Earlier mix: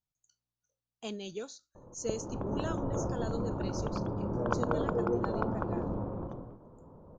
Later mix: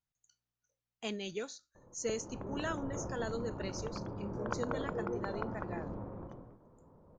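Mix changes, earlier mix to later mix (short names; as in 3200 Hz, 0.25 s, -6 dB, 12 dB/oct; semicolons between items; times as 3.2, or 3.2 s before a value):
background -7.5 dB; master: add bell 2000 Hz +11.5 dB 0.6 oct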